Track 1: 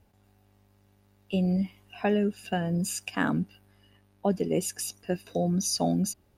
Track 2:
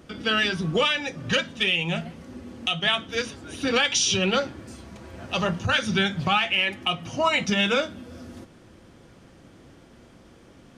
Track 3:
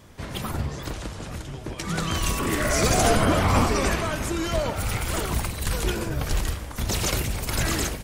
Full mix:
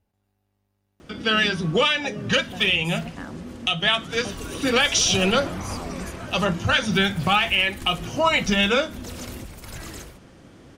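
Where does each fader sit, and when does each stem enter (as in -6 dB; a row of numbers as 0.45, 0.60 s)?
-10.5, +2.5, -12.5 dB; 0.00, 1.00, 2.15 s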